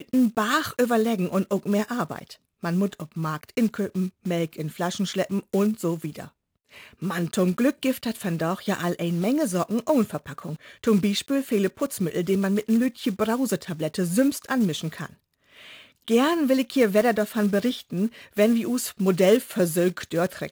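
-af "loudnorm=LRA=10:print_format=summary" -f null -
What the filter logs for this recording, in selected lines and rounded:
Input Integrated:    -24.4 LUFS
Input True Peak:      -7.8 dBTP
Input LRA:             4.3 LU
Input Threshold:     -34.8 LUFS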